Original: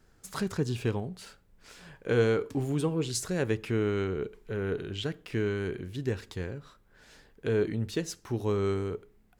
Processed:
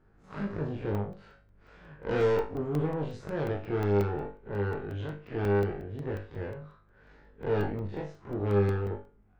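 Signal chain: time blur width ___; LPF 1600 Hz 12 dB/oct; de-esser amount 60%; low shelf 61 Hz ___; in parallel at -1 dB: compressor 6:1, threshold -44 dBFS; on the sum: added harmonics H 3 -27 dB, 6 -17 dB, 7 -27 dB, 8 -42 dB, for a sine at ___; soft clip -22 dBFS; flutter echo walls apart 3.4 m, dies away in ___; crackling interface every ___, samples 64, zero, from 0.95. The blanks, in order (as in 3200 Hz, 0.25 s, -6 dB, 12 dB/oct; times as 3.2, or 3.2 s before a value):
82 ms, +2.5 dB, -16 dBFS, 0.31 s, 0.18 s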